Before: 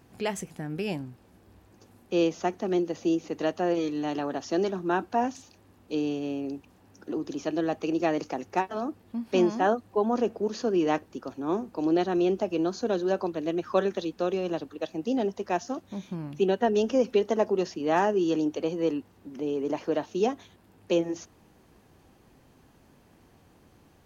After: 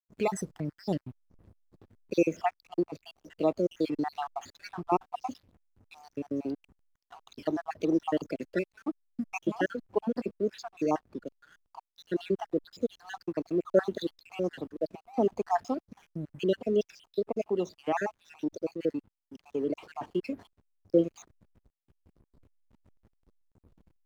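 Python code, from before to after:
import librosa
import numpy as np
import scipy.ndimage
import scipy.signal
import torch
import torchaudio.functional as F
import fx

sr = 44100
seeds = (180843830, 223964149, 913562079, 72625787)

y = fx.spec_dropout(x, sr, seeds[0], share_pct=69)
y = fx.backlash(y, sr, play_db=-50.5)
y = fx.rider(y, sr, range_db=10, speed_s=2.0)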